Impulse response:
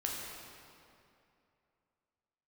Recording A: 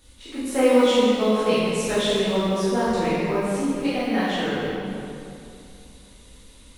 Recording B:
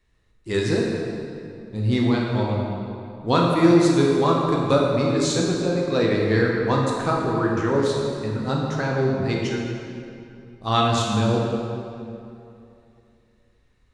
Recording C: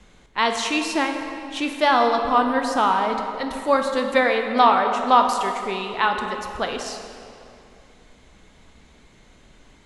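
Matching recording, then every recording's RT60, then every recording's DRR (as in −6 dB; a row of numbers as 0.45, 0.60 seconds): B; 2.7, 2.7, 2.6 seconds; −11.5, −2.5, 4.0 decibels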